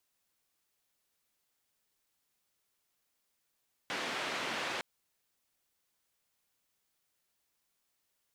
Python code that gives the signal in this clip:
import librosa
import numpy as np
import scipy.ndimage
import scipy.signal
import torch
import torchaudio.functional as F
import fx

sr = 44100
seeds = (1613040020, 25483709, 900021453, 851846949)

y = fx.band_noise(sr, seeds[0], length_s=0.91, low_hz=220.0, high_hz=2700.0, level_db=-37.0)